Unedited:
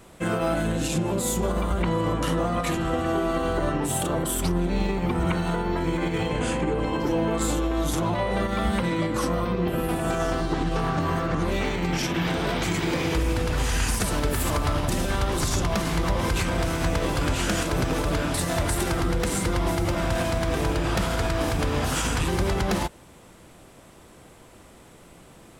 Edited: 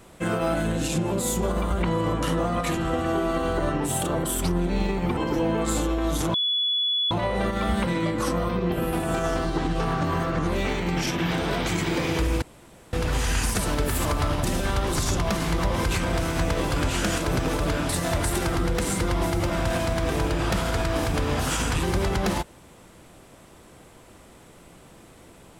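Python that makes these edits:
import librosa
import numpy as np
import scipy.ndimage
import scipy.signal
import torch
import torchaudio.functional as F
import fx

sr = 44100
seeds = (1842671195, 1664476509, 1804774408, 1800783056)

y = fx.edit(x, sr, fx.cut(start_s=5.17, length_s=1.73),
    fx.insert_tone(at_s=8.07, length_s=0.77, hz=3410.0, db=-21.0),
    fx.insert_room_tone(at_s=13.38, length_s=0.51), tone=tone)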